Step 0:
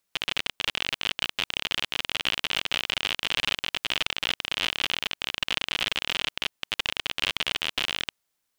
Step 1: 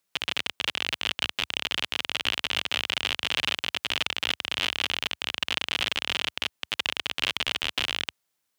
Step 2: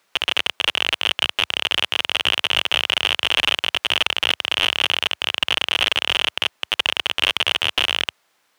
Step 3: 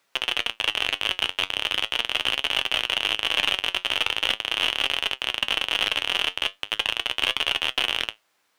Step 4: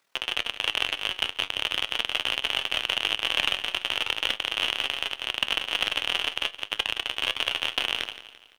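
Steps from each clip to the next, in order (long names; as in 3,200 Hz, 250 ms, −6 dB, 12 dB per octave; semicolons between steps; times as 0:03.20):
high-pass filter 71 Hz 24 dB per octave
mid-hump overdrive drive 22 dB, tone 1,600 Hz, clips at −4.5 dBFS; level +7 dB
flanger 0.4 Hz, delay 7.1 ms, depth 4.1 ms, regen +67%
amplitude modulation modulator 40 Hz, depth 45%; repeating echo 170 ms, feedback 44%, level −14 dB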